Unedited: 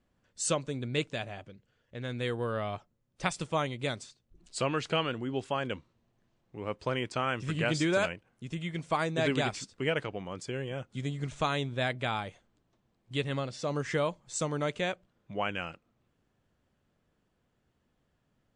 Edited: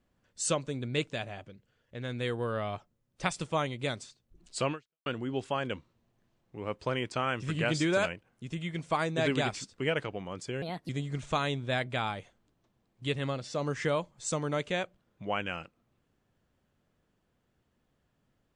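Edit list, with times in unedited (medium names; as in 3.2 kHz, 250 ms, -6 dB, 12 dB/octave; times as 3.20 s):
4.72–5.06 s: fade out exponential
10.62–10.98 s: speed 133%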